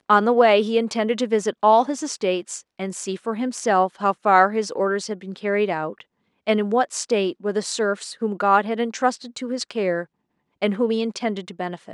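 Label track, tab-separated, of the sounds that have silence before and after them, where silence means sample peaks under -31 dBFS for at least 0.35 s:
6.470000	10.040000	sound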